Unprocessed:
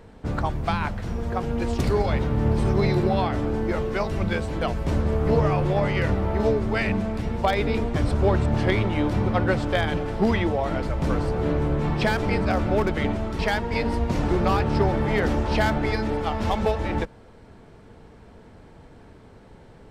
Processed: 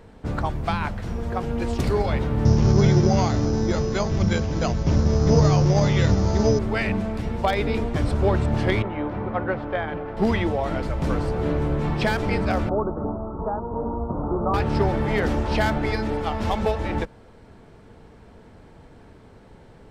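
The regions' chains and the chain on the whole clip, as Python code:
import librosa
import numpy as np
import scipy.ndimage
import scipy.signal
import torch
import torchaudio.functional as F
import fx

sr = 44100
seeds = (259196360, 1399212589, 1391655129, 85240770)

y = fx.chain(x, sr, fx.peak_eq(hz=130.0, db=7.0, octaves=1.7),
    fx.resample_bad(factor=8, down='none', up='hold'),
    fx.brickwall_lowpass(high_hz=7300.0), at=(2.45, 6.59))
y = fx.chain(y, sr, fx.lowpass(hz=1700.0, slope=12),
    fx.low_shelf(hz=260.0, db=-9.5), at=(8.82, 10.17))
y = fx.chain(y, sr, fx.steep_lowpass(hz=1300.0, slope=72),
    fx.low_shelf(hz=250.0, db=-5.5), at=(12.69, 14.54))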